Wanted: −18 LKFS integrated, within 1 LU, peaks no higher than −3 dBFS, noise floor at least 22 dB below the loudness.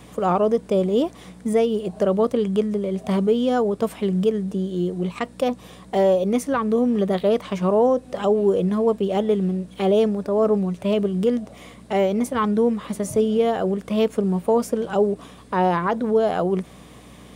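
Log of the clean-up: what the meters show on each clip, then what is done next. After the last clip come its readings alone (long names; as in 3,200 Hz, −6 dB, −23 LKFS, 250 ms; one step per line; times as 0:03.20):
mains hum 60 Hz; hum harmonics up to 300 Hz; level of the hum −48 dBFS; integrated loudness −21.5 LKFS; sample peak −9.5 dBFS; target loudness −18.0 LKFS
→ hum removal 60 Hz, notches 5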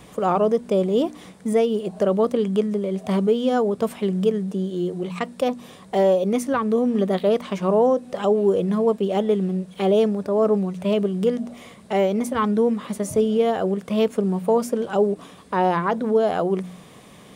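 mains hum none found; integrated loudness −22.0 LKFS; sample peak −9.0 dBFS; target loudness −18.0 LKFS
→ level +4 dB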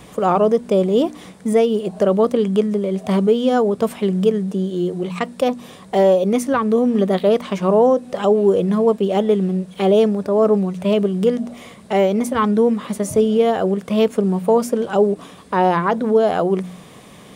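integrated loudness −18.0 LKFS; sample peak −5.0 dBFS; background noise floor −42 dBFS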